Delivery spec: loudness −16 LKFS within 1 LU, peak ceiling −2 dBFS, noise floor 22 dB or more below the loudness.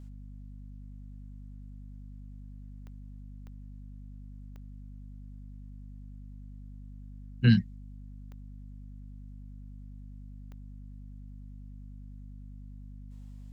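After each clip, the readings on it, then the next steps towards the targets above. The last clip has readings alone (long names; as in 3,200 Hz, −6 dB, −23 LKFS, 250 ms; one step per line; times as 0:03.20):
number of clicks 5; mains hum 50 Hz; hum harmonics up to 250 Hz; level of the hum −43 dBFS; integrated loudness −39.0 LKFS; sample peak −10.0 dBFS; target loudness −16.0 LKFS
→ click removal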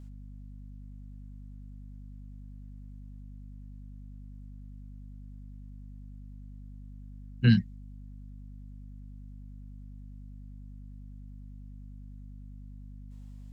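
number of clicks 0; mains hum 50 Hz; hum harmonics up to 250 Hz; level of the hum −43 dBFS
→ mains-hum notches 50/100/150/200/250 Hz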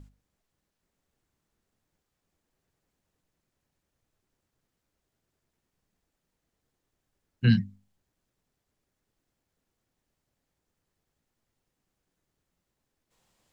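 mains hum none found; integrated loudness −25.5 LKFS; sample peak −10.5 dBFS; target loudness −16.0 LKFS
→ level +9.5 dB
brickwall limiter −2 dBFS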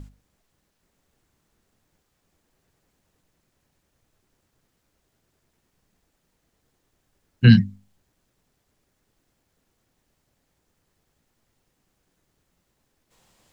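integrated loudness −16.5 LKFS; sample peak −2.0 dBFS; background noise floor −74 dBFS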